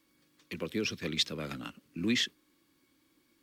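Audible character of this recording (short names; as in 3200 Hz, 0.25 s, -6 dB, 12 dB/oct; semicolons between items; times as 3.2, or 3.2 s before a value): noise floor -72 dBFS; spectral tilt -3.5 dB/oct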